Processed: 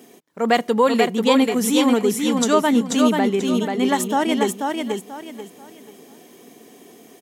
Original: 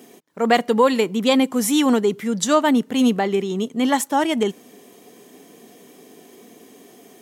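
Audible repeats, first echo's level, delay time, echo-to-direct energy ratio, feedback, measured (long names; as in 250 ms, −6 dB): 3, −4.0 dB, 487 ms, −3.5 dB, 29%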